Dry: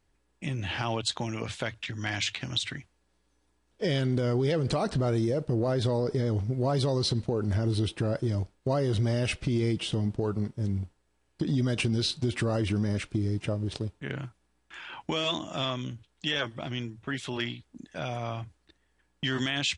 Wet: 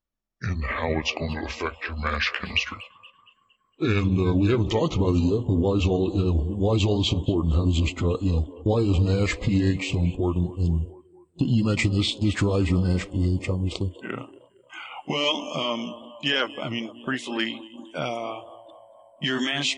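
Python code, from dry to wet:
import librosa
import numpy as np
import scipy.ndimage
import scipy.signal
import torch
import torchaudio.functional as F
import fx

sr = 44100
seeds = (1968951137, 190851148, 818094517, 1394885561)

y = fx.pitch_glide(x, sr, semitones=-6.5, runs='ending unshifted')
y = fx.echo_tape(y, sr, ms=232, feedback_pct=74, wet_db=-12.5, lp_hz=2500.0, drive_db=23.0, wow_cents=39)
y = fx.noise_reduce_blind(y, sr, reduce_db=21)
y = y * 10.0 ** (6.5 / 20.0)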